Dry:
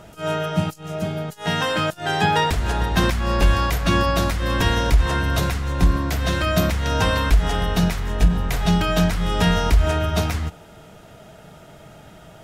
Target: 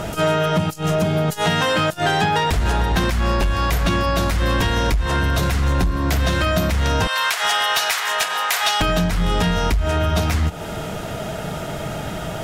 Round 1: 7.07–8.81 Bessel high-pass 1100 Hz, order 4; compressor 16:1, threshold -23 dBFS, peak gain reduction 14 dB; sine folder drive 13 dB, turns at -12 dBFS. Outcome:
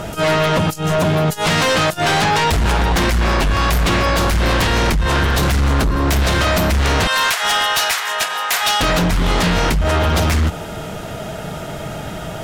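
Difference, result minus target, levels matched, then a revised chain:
compressor: peak gain reduction -7 dB
7.07–8.81 Bessel high-pass 1100 Hz, order 4; compressor 16:1, threshold -30.5 dBFS, peak gain reduction 21.5 dB; sine folder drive 13 dB, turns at -12 dBFS

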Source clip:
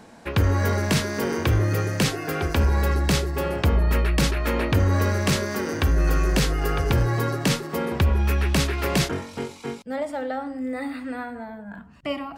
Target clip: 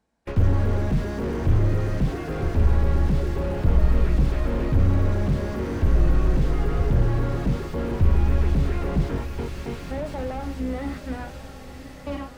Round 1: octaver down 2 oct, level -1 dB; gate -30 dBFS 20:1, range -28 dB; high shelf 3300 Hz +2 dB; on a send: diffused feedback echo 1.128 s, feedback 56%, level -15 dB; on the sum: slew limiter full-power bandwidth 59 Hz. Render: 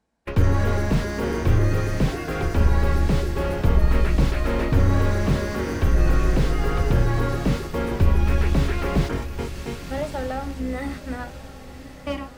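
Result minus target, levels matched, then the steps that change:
slew limiter: distortion -6 dB
change: slew limiter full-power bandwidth 23 Hz

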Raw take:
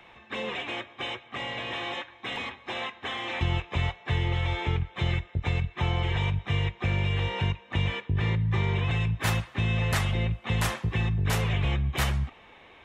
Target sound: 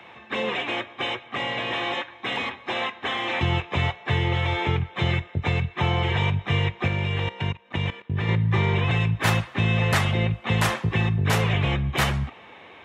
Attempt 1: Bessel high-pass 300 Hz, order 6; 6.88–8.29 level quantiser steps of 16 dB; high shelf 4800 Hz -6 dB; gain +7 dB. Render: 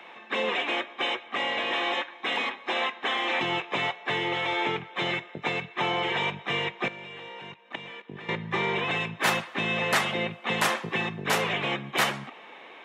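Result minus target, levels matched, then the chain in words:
125 Hz band -14.5 dB
Bessel high-pass 110 Hz, order 6; 6.88–8.29 level quantiser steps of 16 dB; high shelf 4800 Hz -6 dB; gain +7 dB

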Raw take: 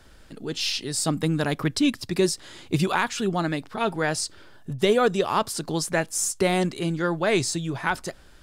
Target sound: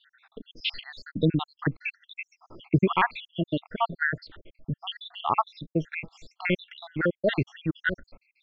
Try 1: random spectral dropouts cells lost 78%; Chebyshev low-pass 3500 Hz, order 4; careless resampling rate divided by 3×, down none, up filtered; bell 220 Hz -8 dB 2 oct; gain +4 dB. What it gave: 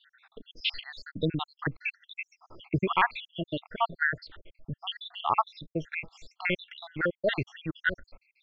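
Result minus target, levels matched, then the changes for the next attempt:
250 Hz band -4.0 dB
remove: bell 220 Hz -8 dB 2 oct

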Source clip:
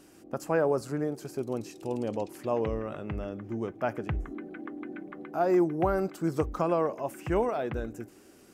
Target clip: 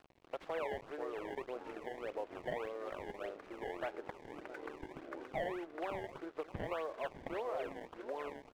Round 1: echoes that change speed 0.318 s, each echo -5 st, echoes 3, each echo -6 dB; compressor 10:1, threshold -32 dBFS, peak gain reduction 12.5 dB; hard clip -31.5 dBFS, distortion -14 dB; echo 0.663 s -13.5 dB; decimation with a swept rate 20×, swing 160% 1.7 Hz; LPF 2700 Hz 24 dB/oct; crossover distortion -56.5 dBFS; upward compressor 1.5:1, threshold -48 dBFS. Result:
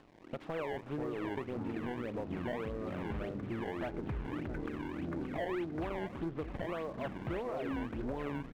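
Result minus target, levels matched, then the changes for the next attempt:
500 Hz band -2.5 dB
add after compressor: HPF 420 Hz 24 dB/oct

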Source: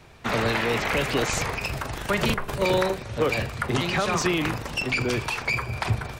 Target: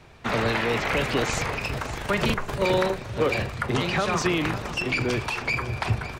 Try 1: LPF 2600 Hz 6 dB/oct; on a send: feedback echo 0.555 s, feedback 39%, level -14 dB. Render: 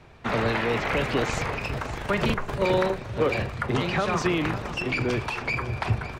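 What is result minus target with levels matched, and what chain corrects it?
8000 Hz band -4.5 dB
LPF 6400 Hz 6 dB/oct; on a send: feedback echo 0.555 s, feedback 39%, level -14 dB

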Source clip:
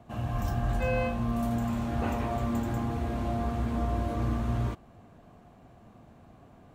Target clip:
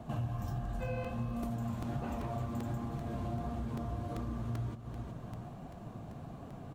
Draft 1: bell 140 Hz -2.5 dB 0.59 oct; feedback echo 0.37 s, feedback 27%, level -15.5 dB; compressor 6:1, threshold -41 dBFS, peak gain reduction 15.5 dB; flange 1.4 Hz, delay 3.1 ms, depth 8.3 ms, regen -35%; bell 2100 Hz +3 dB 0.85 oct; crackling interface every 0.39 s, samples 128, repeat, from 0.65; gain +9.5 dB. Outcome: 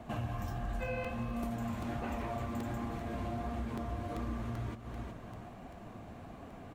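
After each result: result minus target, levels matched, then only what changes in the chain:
2000 Hz band +6.0 dB; 125 Hz band -2.5 dB
change: second bell 2100 Hz -4 dB 0.85 oct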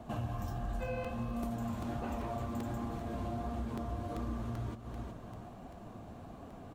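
125 Hz band -2.5 dB
change: first bell 140 Hz +7.5 dB 0.59 oct

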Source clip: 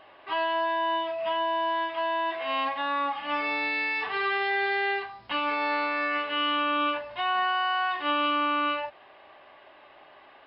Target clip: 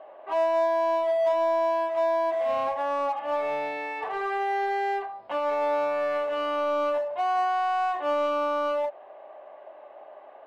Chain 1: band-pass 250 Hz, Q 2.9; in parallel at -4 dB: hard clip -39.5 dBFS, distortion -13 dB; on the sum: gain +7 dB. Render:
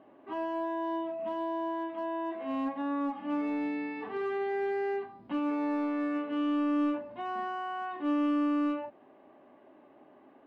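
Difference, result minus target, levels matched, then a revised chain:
250 Hz band +17.0 dB
band-pass 610 Hz, Q 2.9; in parallel at -4 dB: hard clip -39.5 dBFS, distortion -7 dB; on the sum: gain +7 dB

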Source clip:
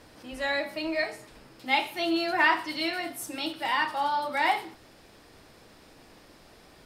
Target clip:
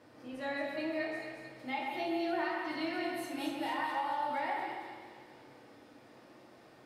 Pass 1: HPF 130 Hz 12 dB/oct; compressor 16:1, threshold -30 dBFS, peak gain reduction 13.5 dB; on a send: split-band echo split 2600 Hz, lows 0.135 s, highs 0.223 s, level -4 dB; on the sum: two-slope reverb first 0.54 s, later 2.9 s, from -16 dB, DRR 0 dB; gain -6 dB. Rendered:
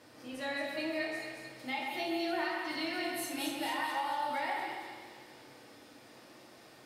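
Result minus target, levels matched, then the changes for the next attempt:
4000 Hz band +5.0 dB
add after HPF: high shelf 2700 Hz -11.5 dB

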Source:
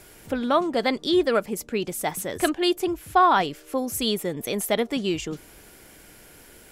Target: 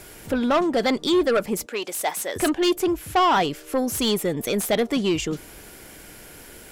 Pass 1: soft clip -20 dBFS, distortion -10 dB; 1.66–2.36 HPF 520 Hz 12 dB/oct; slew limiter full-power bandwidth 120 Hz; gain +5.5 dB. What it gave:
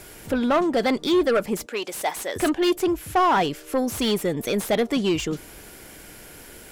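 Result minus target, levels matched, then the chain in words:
slew limiter: distortion +7 dB
soft clip -20 dBFS, distortion -10 dB; 1.66–2.36 HPF 520 Hz 12 dB/oct; slew limiter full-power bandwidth 255.5 Hz; gain +5.5 dB

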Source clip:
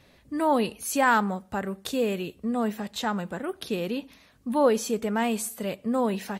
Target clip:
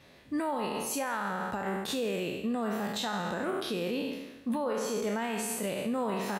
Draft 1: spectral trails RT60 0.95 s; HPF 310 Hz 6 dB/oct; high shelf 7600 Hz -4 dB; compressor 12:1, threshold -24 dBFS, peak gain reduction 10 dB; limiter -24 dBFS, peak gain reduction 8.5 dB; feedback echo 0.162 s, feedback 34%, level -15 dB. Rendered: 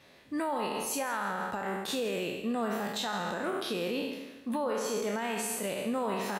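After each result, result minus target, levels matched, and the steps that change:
echo-to-direct +6.5 dB; 125 Hz band -2.5 dB
change: feedback echo 0.162 s, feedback 34%, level -21.5 dB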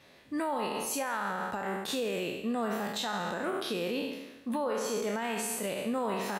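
125 Hz band -2.5 dB
change: HPF 130 Hz 6 dB/oct

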